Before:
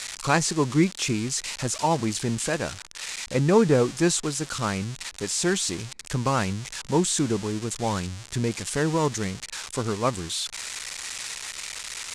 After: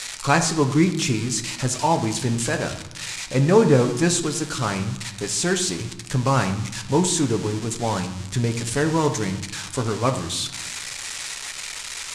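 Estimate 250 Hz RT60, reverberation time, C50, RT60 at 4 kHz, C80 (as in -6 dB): 1.5 s, 0.90 s, 10.5 dB, 0.55 s, 13.0 dB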